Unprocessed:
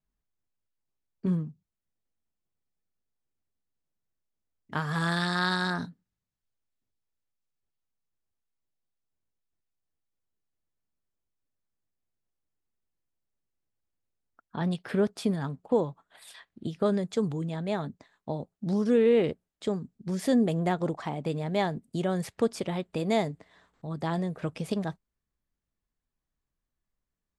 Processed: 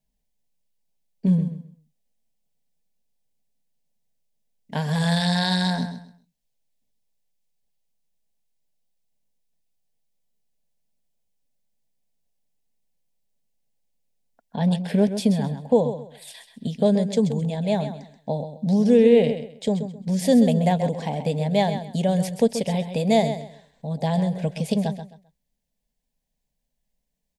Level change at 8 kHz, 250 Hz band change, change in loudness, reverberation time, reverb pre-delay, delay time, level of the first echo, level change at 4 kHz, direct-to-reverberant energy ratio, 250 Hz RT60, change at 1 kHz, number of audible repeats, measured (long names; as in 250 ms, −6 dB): +8.5 dB, +8.0 dB, +7.0 dB, no reverb audible, no reverb audible, 131 ms, −10.0 dB, +7.5 dB, no reverb audible, no reverb audible, +5.0 dB, 3